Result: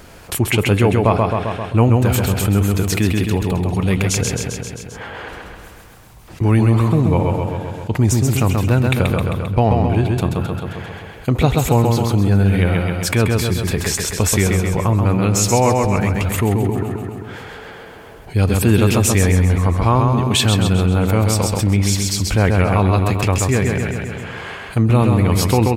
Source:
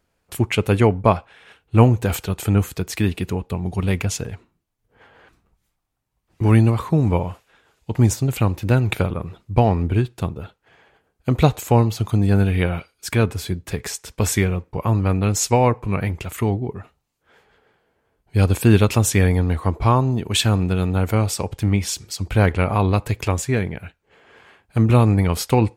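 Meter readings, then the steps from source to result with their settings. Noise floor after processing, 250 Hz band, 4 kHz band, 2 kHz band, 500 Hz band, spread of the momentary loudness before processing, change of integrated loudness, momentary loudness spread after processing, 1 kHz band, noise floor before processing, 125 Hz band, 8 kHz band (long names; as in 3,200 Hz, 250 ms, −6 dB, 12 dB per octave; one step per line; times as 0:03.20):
−38 dBFS, +3.5 dB, +5.5 dB, +5.0 dB, +3.5 dB, 11 LU, +3.0 dB, 13 LU, +3.5 dB, −72 dBFS, +3.5 dB, +6.0 dB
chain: on a send: repeating echo 132 ms, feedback 49%, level −5 dB
on the sum: envelope flattener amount 50%
level −2 dB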